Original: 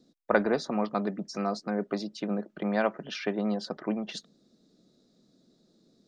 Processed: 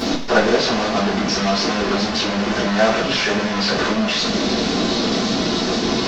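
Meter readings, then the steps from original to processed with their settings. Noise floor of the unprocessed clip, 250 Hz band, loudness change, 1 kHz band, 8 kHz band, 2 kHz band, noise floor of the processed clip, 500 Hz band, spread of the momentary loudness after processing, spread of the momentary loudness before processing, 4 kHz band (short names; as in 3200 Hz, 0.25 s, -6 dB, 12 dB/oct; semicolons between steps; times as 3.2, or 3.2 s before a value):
-68 dBFS, +12.0 dB, +12.5 dB, +13.5 dB, n/a, +15.5 dB, -22 dBFS, +11.5 dB, 3 LU, 7 LU, +23.5 dB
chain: delta modulation 32 kbps, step -21.5 dBFS; two-slope reverb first 0.31 s, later 2.2 s, from -18 dB, DRR -9.5 dB; wow and flutter 25 cents; gain -1 dB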